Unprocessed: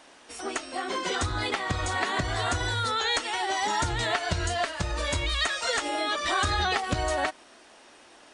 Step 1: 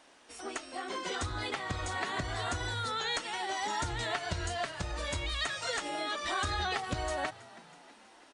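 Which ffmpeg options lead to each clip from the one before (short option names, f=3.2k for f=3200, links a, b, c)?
-filter_complex "[0:a]asplit=6[a][b][c][d][e][f];[b]adelay=324,afreqshift=52,volume=-20.5dB[g];[c]adelay=648,afreqshift=104,volume=-24.8dB[h];[d]adelay=972,afreqshift=156,volume=-29.1dB[i];[e]adelay=1296,afreqshift=208,volume=-33.4dB[j];[f]adelay=1620,afreqshift=260,volume=-37.7dB[k];[a][g][h][i][j][k]amix=inputs=6:normalize=0,volume=-7dB"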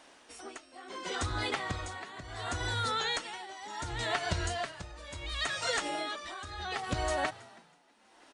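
-af "tremolo=f=0.7:d=0.8,volume=3dB"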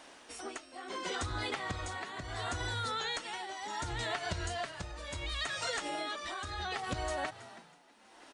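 -af "acompressor=threshold=-38dB:ratio=3,volume=3dB"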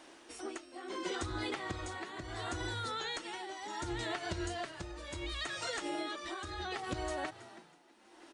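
-af "equalizer=f=340:t=o:w=0.3:g=12.5,volume=-3dB"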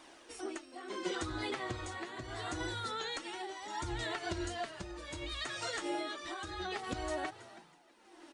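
-af "flanger=delay=0.8:depth=8.4:regen=51:speed=0.26:shape=triangular,volume=4dB"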